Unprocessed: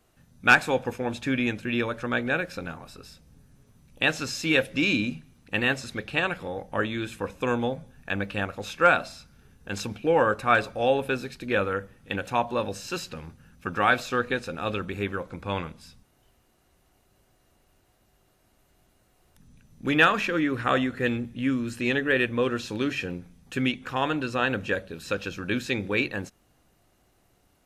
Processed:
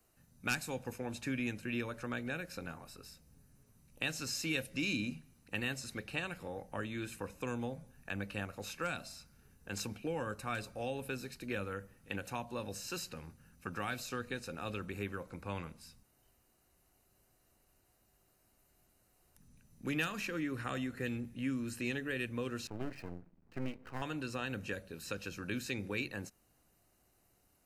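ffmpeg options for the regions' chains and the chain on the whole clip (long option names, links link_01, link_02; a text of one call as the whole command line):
ffmpeg -i in.wav -filter_complex "[0:a]asettb=1/sr,asplit=3[link_01][link_02][link_03];[link_01]atrim=end=22.674[link_04];[link_02]atrim=start=22.67:end=24.02,asetpts=PTS-STARTPTS,afade=type=in:duration=0.004:curve=qsin,afade=type=out:start_time=1.346:duration=0.004:curve=qsin,lowpass=1400,aeval=exprs='max(val(0),0)':channel_layout=same[link_05];[link_03]atrim=start=24.016[link_06];[link_04][link_05]acrossfade=duration=0.004:curve1=hsin:curve2=qsin[link_07];[link_07][link_06]acrossfade=duration=0.004:curve1=qsin:curve2=hsin,highshelf=frequency=8000:gain=11,bandreject=frequency=3400:width=6.7,acrossover=split=250|3000[link_08][link_09][link_10];[link_09]acompressor=threshold=-31dB:ratio=4[link_11];[link_08][link_11][link_10]amix=inputs=3:normalize=0,volume=-8.5dB" out.wav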